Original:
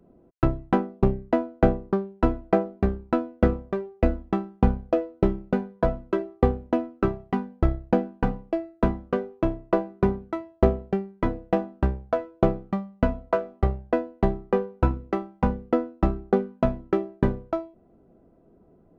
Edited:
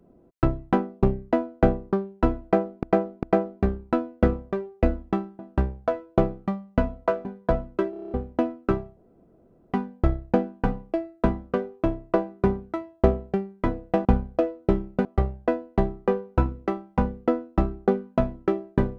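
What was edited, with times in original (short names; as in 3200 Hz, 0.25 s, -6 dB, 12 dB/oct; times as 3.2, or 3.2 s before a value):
2.43–2.83 loop, 3 plays
4.59–5.59 swap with 11.64–13.5
6.24 stutter in place 0.03 s, 8 plays
7.31 insert room tone 0.75 s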